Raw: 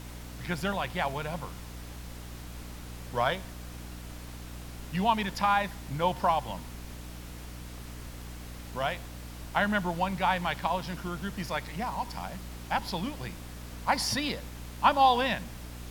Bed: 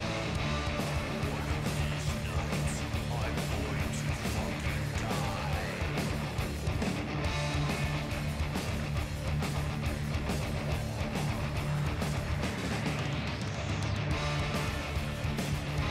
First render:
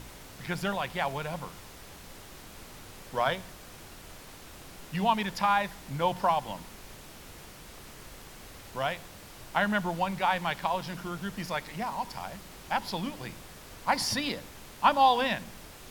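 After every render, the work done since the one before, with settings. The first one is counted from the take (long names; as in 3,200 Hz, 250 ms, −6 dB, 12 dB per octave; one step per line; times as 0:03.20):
hum removal 60 Hz, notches 5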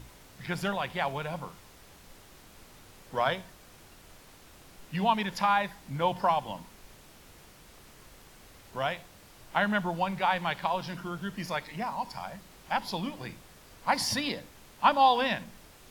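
noise reduction from a noise print 6 dB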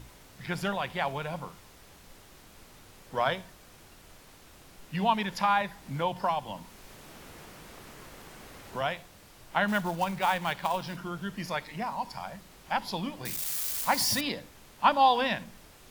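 0:05.61–0:08.81: multiband upward and downward compressor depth 40%
0:09.68–0:10.96: floating-point word with a short mantissa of 2 bits
0:13.25–0:14.21: spike at every zero crossing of −25.5 dBFS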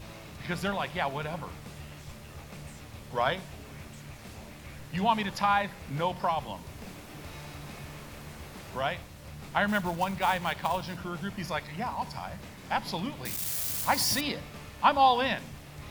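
mix in bed −13 dB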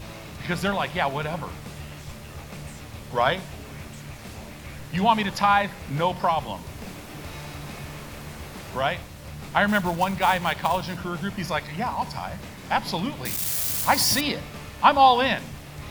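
level +6 dB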